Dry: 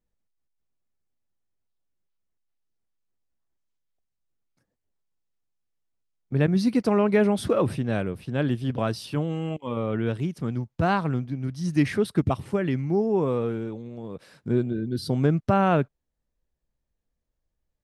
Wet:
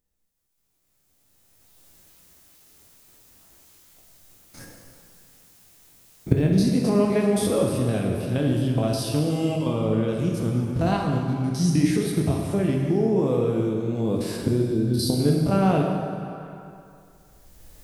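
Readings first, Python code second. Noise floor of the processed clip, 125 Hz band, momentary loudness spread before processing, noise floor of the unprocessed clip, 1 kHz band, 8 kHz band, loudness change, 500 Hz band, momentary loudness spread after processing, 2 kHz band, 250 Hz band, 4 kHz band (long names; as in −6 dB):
−69 dBFS, +3.5 dB, 9 LU, −81 dBFS, −1.5 dB, +11.0 dB, +2.5 dB, +1.5 dB, 6 LU, −3.0 dB, +3.0 dB, +5.5 dB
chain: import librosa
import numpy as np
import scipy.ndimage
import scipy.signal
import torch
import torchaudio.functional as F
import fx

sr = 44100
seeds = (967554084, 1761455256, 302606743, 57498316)

y = fx.spec_steps(x, sr, hold_ms=50)
y = fx.recorder_agc(y, sr, target_db=-15.5, rise_db_per_s=16.0, max_gain_db=30)
y = fx.high_shelf(y, sr, hz=5400.0, db=11.5)
y = fx.rev_plate(y, sr, seeds[0], rt60_s=2.3, hf_ratio=0.8, predelay_ms=0, drr_db=0.0)
y = fx.dynamic_eq(y, sr, hz=1500.0, q=0.75, threshold_db=-39.0, ratio=4.0, max_db=-7)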